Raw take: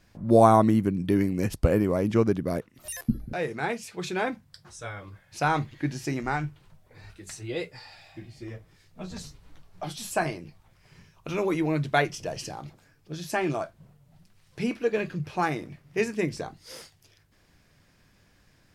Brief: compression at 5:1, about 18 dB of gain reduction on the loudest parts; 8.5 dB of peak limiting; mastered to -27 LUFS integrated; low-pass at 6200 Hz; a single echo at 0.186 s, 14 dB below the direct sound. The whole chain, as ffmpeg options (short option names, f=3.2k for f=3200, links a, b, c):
-af "lowpass=6.2k,acompressor=threshold=-34dB:ratio=5,alimiter=level_in=5dB:limit=-24dB:level=0:latency=1,volume=-5dB,aecho=1:1:186:0.2,volume=14dB"